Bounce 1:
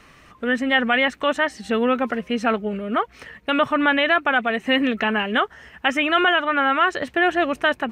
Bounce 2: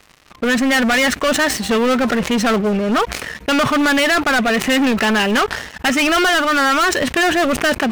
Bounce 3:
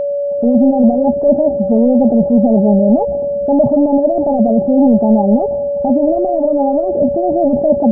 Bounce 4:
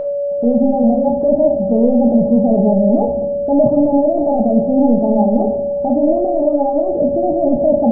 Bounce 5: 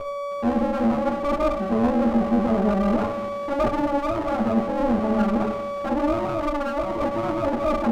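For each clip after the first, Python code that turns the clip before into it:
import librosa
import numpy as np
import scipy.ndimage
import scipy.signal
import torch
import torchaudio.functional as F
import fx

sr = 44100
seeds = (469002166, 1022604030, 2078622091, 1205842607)

y1 = fx.leveller(x, sr, passes=5)
y1 = fx.sustainer(y1, sr, db_per_s=76.0)
y1 = F.gain(torch.from_numpy(y1), -6.0).numpy()
y2 = scipy.signal.sosfilt(scipy.signal.cheby1(6, 9, 860.0, 'lowpass', fs=sr, output='sos'), y1)
y2 = y2 + 10.0 ** (-23.0 / 20.0) * np.sin(2.0 * np.pi * 570.0 * np.arange(len(y2)) / sr)
y2 = fx.attack_slew(y2, sr, db_per_s=190.0)
y2 = F.gain(torch.from_numpy(y2), 8.5).numpy()
y3 = fx.room_shoebox(y2, sr, seeds[0], volume_m3=170.0, walls='mixed', distance_m=0.57)
y3 = F.gain(torch.from_numpy(y3), -3.0).numpy()
y4 = fx.lower_of_two(y3, sr, delay_ms=9.3)
y4 = F.gain(torch.from_numpy(y4), -7.0).numpy()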